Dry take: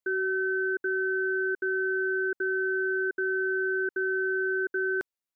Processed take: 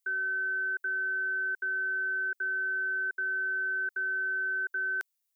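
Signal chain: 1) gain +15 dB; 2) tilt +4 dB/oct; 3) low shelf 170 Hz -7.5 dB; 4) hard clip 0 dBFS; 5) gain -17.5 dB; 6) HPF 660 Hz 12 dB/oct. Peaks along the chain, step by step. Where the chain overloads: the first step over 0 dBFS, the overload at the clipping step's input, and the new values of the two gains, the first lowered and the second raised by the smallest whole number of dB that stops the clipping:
-6.5, -3.5, -3.0, -3.0, -20.5, -19.0 dBFS; no overload

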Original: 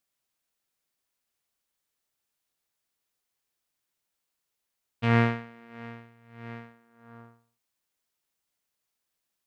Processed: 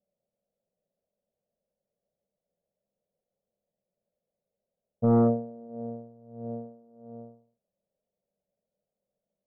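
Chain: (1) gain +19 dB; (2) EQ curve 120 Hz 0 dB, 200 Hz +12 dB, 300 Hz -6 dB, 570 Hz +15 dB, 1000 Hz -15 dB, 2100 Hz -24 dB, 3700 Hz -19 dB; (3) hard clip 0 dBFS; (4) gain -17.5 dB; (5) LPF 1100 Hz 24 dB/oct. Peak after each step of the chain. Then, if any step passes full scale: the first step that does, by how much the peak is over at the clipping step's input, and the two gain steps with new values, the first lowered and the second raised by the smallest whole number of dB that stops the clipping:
+10.0, +8.5, 0.0, -17.5, -16.0 dBFS; step 1, 8.5 dB; step 1 +10 dB, step 4 -8.5 dB

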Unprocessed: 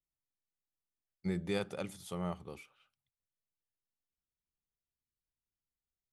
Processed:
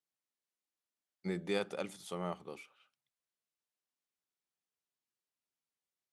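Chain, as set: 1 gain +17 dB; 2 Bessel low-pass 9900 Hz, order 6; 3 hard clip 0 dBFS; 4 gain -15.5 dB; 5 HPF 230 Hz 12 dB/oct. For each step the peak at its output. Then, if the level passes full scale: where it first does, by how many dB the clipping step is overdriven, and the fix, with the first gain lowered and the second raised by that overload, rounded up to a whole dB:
-4.5, -4.5, -4.5, -20.0, -18.5 dBFS; no overload

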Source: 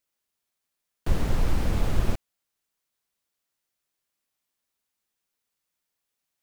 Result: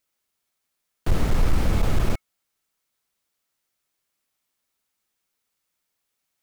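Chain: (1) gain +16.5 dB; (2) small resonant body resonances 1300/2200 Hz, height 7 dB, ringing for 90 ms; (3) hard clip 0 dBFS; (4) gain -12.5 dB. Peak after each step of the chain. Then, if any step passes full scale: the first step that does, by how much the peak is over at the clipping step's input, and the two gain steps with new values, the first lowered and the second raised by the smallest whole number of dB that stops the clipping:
+7.5, +7.5, 0.0, -12.5 dBFS; step 1, 7.5 dB; step 1 +8.5 dB, step 4 -4.5 dB

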